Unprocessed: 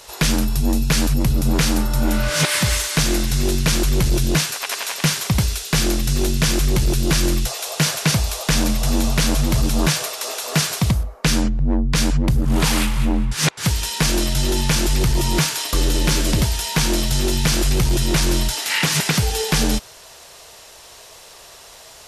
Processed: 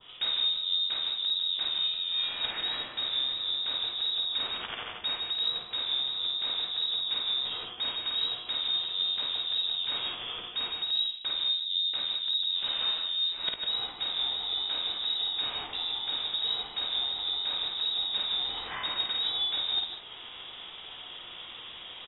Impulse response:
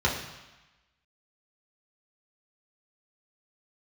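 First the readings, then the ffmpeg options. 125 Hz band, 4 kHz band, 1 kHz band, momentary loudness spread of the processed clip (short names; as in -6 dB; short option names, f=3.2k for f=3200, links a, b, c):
under -35 dB, -1.5 dB, -14.5 dB, 7 LU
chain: -filter_complex "[0:a]highpass=140,equalizer=f=2k:t=o:w=2.7:g=-11,areverse,acompressor=threshold=-33dB:ratio=16,areverse,asplit=2[a][b];[b]adelay=18,volume=-12dB[c];[a][c]amix=inputs=2:normalize=0,asplit=2[d][e];[e]aecho=0:1:52|149|156|195:0.631|0.398|0.376|0.168[f];[d][f]amix=inputs=2:normalize=0,lowpass=f=3.3k:t=q:w=0.5098,lowpass=f=3.3k:t=q:w=0.6013,lowpass=f=3.3k:t=q:w=0.9,lowpass=f=3.3k:t=q:w=2.563,afreqshift=-3900,adynamicequalizer=threshold=0.00398:dfrequency=2600:dqfactor=0.87:tfrequency=2600:tqfactor=0.87:attack=5:release=100:ratio=0.375:range=2:mode=cutabove:tftype=bell,volume=6.5dB"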